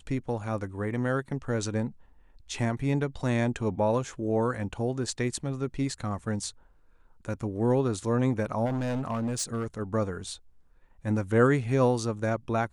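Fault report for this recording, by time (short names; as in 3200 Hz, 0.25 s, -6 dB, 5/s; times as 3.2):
8.65–9.66 clipped -26 dBFS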